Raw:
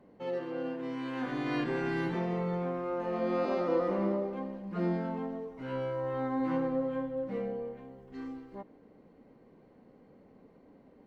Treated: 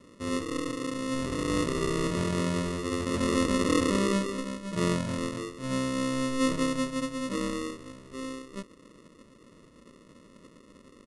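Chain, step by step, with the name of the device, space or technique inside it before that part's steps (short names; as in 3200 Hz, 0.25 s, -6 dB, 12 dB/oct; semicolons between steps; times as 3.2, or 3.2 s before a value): crushed at another speed (playback speed 2×; sample-and-hold 28×; playback speed 0.5×); gain +4 dB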